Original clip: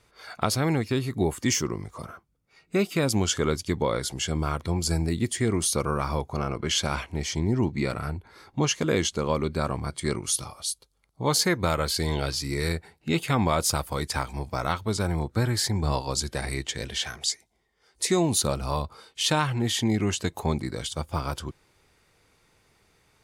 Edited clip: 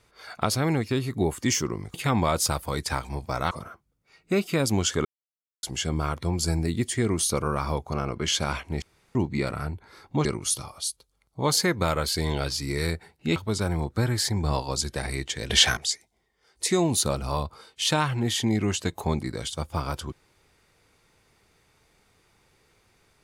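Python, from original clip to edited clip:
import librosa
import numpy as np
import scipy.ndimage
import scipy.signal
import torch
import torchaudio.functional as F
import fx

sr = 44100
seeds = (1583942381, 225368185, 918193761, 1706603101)

y = fx.edit(x, sr, fx.silence(start_s=3.48, length_s=0.58),
    fx.room_tone_fill(start_s=7.25, length_s=0.33),
    fx.cut(start_s=8.68, length_s=1.39),
    fx.move(start_s=13.18, length_s=1.57, to_s=1.94),
    fx.clip_gain(start_s=16.89, length_s=0.27, db=11.5), tone=tone)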